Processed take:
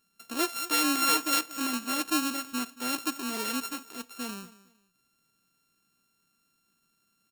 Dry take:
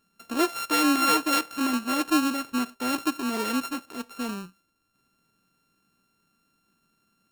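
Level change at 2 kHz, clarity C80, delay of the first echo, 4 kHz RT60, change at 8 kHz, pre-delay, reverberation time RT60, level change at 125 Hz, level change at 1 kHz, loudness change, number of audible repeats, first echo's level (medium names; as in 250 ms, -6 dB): -3.0 dB, no reverb, 228 ms, no reverb, +2.0 dB, no reverb, no reverb, no reading, -5.0 dB, -3.0 dB, 2, -18.5 dB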